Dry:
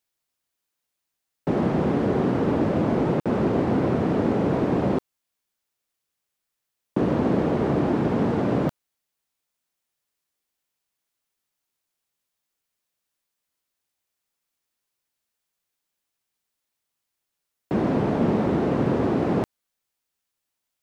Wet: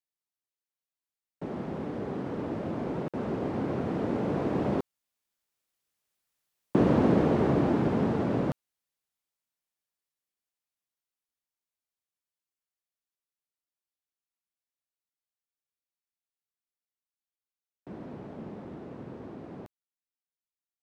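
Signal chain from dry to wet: Doppler pass-by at 6.54, 13 m/s, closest 15 m

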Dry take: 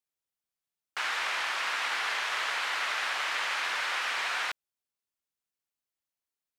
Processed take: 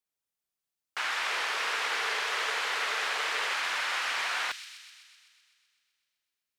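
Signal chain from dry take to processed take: 1.3–3.53 bell 440 Hz +12.5 dB 0.36 oct; thin delay 0.127 s, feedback 68%, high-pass 3800 Hz, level -5.5 dB

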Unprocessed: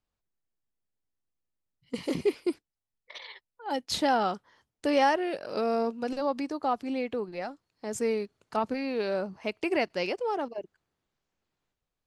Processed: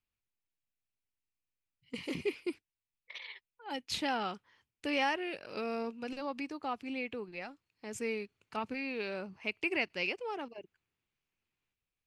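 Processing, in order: fifteen-band EQ 100 Hz +4 dB, 630 Hz -5 dB, 2500 Hz +11 dB; gain -7.5 dB

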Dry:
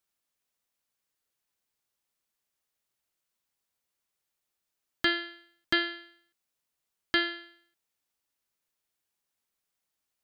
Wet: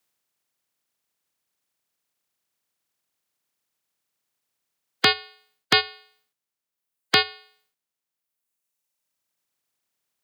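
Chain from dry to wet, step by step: spectral limiter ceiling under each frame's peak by 21 dB; reverb removal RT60 1.8 s; frequency shift +85 Hz; gain +8.5 dB

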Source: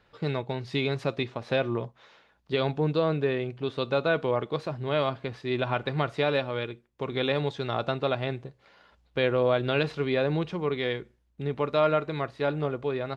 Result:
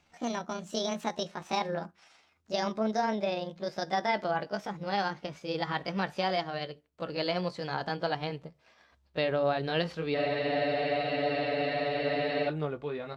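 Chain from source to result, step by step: gliding pitch shift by +8 st ending unshifted; spectral freeze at 10.18, 2.29 s; gain -3 dB

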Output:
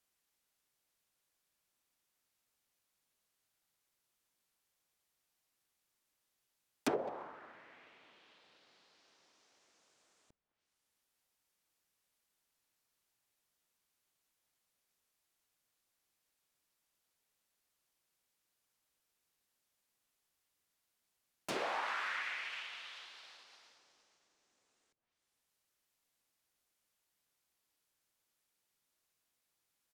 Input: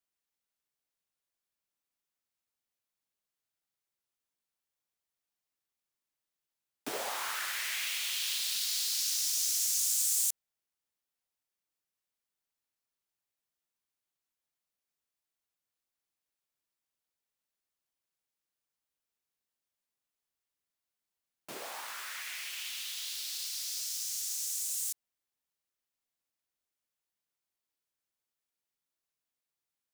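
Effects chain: treble ducked by the level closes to 350 Hz, closed at -32.5 dBFS; speakerphone echo 0.21 s, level -20 dB; gain +7 dB

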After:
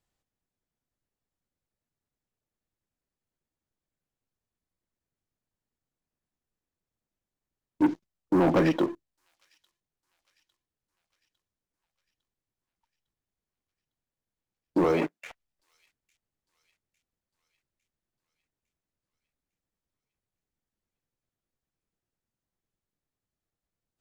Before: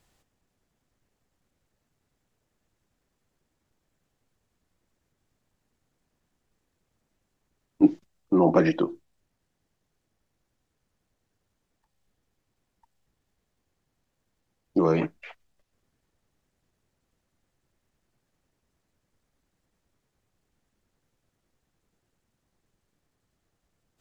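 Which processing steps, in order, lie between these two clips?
14.84–15.3 HPF 250 Hz 12 dB/oct; sample leveller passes 3; thin delay 0.854 s, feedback 54%, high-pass 4700 Hz, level -19 dB; gain -9 dB

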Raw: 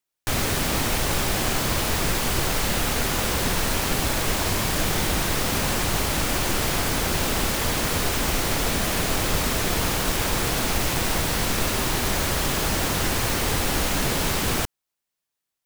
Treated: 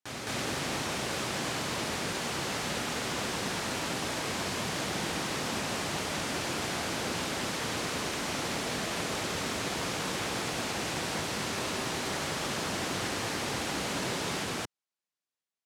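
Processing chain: BPF 140–8000 Hz; reverse echo 0.215 s -4.5 dB; gain -8.5 dB

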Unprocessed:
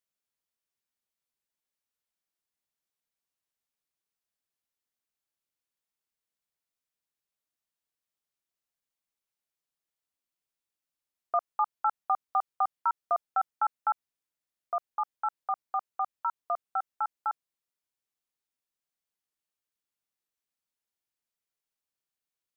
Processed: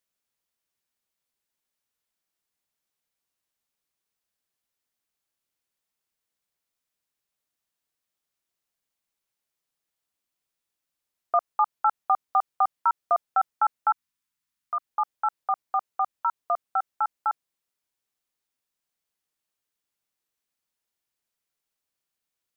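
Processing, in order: 13.91–14.86 band shelf 510 Hz -15.5 dB 1.3 oct; gain +5 dB

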